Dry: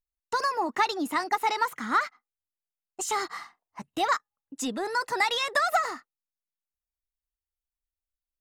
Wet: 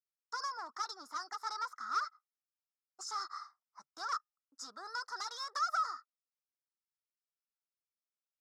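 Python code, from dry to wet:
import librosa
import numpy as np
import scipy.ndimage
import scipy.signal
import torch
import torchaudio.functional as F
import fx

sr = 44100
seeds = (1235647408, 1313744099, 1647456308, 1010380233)

y = np.minimum(x, 2.0 * 10.0 ** (-26.5 / 20.0) - x)
y = fx.double_bandpass(y, sr, hz=2600.0, octaves=2.0)
y = fx.notch(y, sr, hz=3100.0, q=12.0)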